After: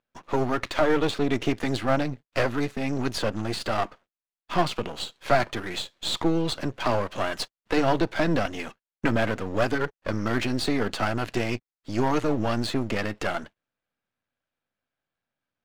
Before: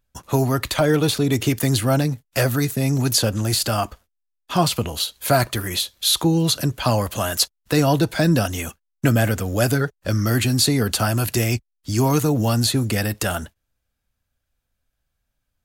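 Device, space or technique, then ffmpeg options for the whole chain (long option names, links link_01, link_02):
crystal radio: -af "highpass=210,lowpass=2900,aeval=exprs='if(lt(val(0),0),0.251*val(0),val(0))':channel_layout=same,volume=1dB"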